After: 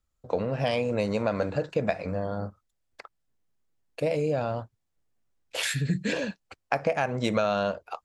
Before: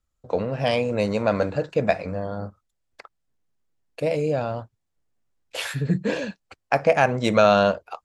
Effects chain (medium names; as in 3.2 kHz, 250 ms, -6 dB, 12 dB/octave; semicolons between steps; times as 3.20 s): 5.63–6.13 s: graphic EQ 500/1000/2000/4000/8000 Hz -6/-11/+6/+4/+8 dB; compression 5:1, threshold -21 dBFS, peak gain reduction 9.5 dB; trim -1 dB